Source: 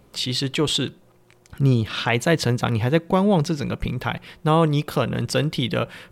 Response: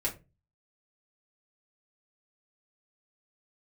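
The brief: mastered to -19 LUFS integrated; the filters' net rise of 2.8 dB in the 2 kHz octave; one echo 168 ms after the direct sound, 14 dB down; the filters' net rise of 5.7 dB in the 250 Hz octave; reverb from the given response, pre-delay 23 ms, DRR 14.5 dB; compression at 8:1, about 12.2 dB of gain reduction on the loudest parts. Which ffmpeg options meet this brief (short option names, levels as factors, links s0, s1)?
-filter_complex "[0:a]equalizer=f=250:t=o:g=8,equalizer=f=2000:t=o:g=3.5,acompressor=threshold=0.0794:ratio=8,aecho=1:1:168:0.2,asplit=2[s0][s1];[1:a]atrim=start_sample=2205,adelay=23[s2];[s1][s2]afir=irnorm=-1:irlink=0,volume=0.106[s3];[s0][s3]amix=inputs=2:normalize=0,volume=2.51"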